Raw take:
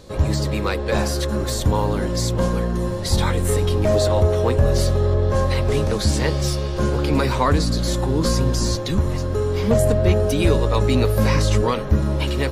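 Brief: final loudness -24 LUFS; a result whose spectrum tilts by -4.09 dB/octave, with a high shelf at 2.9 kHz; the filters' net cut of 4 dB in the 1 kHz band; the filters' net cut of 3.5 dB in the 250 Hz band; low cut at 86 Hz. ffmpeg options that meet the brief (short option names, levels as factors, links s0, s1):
-af "highpass=86,equalizer=f=250:t=o:g=-4.5,equalizer=f=1000:t=o:g=-5.5,highshelf=f=2900:g=7.5,volume=0.75"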